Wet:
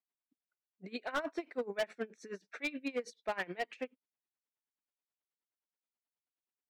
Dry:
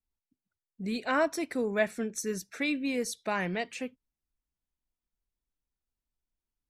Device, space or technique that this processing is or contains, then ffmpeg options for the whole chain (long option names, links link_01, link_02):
helicopter radio: -af "highpass=360,lowpass=3000,aeval=exprs='val(0)*pow(10,-23*(0.5-0.5*cos(2*PI*9.4*n/s))/20)':channel_layout=same,asoftclip=type=hard:threshold=-30.5dB,volume=2dB"